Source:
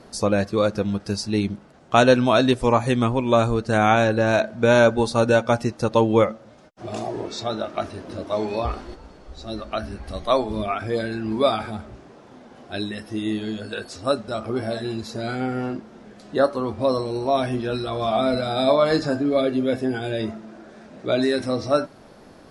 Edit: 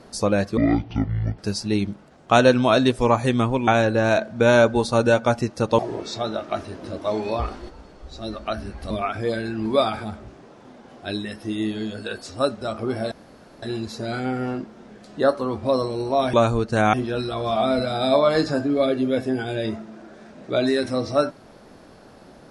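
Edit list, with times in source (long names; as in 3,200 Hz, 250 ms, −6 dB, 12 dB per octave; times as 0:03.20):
0:00.57–0:01.01: play speed 54%
0:03.30–0:03.90: move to 0:17.49
0:06.01–0:07.04: remove
0:10.16–0:10.57: remove
0:14.78: splice in room tone 0.51 s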